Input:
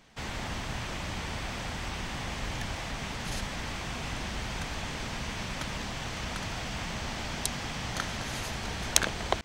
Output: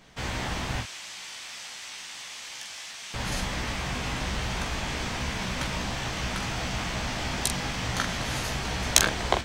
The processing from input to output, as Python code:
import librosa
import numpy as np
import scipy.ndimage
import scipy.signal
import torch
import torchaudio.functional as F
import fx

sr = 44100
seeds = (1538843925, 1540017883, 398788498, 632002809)

y = fx.bandpass_q(x, sr, hz=7700.0, q=0.57, at=(0.81, 3.14))
y = fx.room_early_taps(y, sr, ms=(16, 44), db=(-5.0, -7.0))
y = y * librosa.db_to_amplitude(3.0)